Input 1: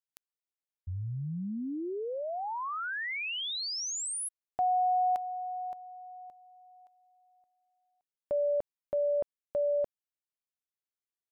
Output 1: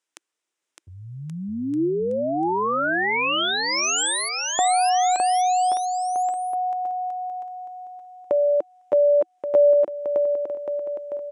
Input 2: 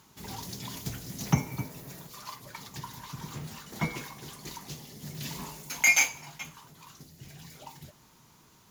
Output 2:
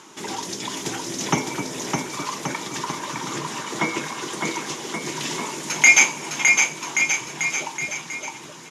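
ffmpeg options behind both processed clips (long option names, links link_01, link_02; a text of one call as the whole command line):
ffmpeg -i in.wav -filter_complex "[0:a]highpass=320,equalizer=frequency=330:width_type=q:width=4:gain=7,equalizer=frequency=720:width_type=q:width=4:gain=-3,equalizer=frequency=4400:width_type=q:width=4:gain=-7,lowpass=frequency=8900:width=0.5412,lowpass=frequency=8900:width=1.3066,asplit=2[link_01][link_02];[link_02]acompressor=threshold=-46dB:ratio=6:release=296:detection=peak,volume=2dB[link_03];[link_01][link_03]amix=inputs=2:normalize=0,aecho=1:1:610|1128|1569|1944|2262:0.631|0.398|0.251|0.158|0.1,volume=8.5dB" out.wav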